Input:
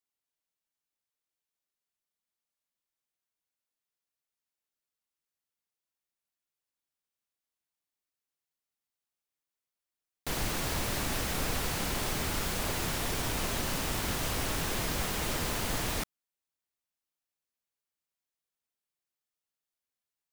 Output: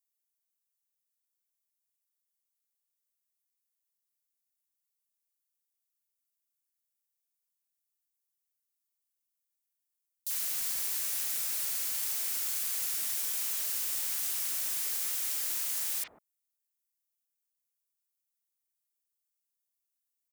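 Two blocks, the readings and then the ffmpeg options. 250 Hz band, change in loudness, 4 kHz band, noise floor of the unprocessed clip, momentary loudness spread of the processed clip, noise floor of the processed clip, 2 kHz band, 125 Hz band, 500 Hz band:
under -25 dB, +2.0 dB, -4.5 dB, under -85 dBFS, 1 LU, -85 dBFS, -9.5 dB, under -30 dB, -20.5 dB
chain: -filter_complex "[0:a]aderivative,acrossover=split=920|3500[s0][s1][s2];[s1]adelay=40[s3];[s0]adelay=150[s4];[s4][s3][s2]amix=inputs=3:normalize=0,volume=1.41"

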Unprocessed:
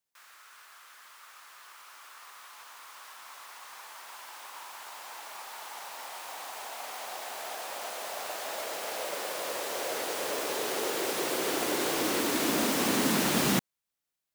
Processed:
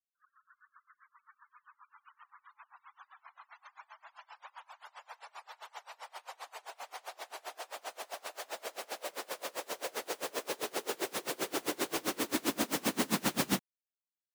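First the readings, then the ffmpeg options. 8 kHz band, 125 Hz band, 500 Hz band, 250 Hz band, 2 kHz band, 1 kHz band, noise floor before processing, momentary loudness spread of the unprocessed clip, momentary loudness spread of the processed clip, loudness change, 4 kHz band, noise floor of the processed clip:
-6.5 dB, -6.5 dB, -6.5 dB, -6.0 dB, -6.5 dB, -6.5 dB, under -85 dBFS, 22 LU, 22 LU, -6.0 dB, -6.5 dB, under -85 dBFS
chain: -af "afftfilt=real='re*gte(hypot(re,im),0.00562)':imag='im*gte(hypot(re,im),0.00562)':win_size=1024:overlap=0.75,aeval=exprs='val(0)*pow(10,-28*(0.5-0.5*cos(2*PI*7.6*n/s))/20)':c=same"

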